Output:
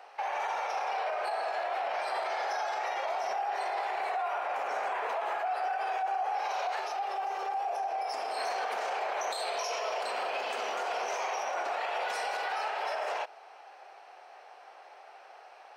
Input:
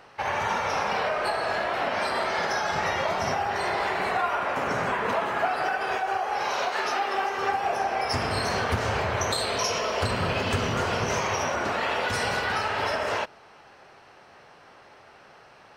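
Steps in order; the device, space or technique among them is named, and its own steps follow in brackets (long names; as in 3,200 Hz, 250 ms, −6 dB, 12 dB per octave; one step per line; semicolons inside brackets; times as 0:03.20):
laptop speaker (high-pass filter 420 Hz 24 dB per octave; parametric band 750 Hz +11 dB 0.4 octaves; parametric band 2,400 Hz +4 dB 0.21 octaves; brickwall limiter −20.5 dBFS, peak gain reduction 13 dB)
0:06.79–0:08.37: parametric band 1,800 Hz −5 dB 1.6 octaves
level −4.5 dB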